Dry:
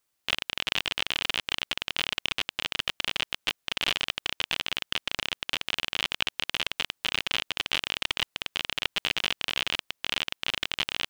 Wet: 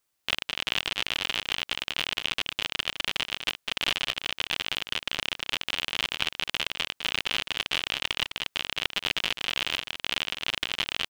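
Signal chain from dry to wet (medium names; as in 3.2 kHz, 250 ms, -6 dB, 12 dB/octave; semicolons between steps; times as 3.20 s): delay 206 ms -9 dB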